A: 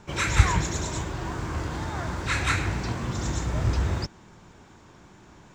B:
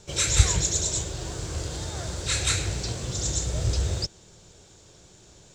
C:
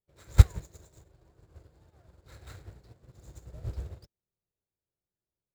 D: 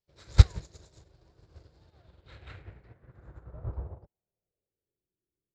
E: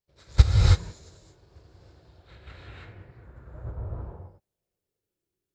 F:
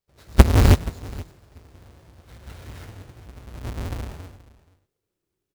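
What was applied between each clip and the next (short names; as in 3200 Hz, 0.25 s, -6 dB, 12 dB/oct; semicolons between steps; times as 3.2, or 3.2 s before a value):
ten-band EQ 250 Hz -10 dB, 500 Hz +6 dB, 1000 Hz -11 dB, 2000 Hz -6 dB, 4000 Hz +6 dB, 8000 Hz +11 dB
median filter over 15 samples; upward expander 2.5:1, over -43 dBFS; gain +4 dB
low-pass sweep 5000 Hz -> 360 Hz, 1.75–5.12
non-linear reverb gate 0.35 s rising, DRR -5 dB; gain -1 dB
half-waves squared off; echo 0.477 s -20 dB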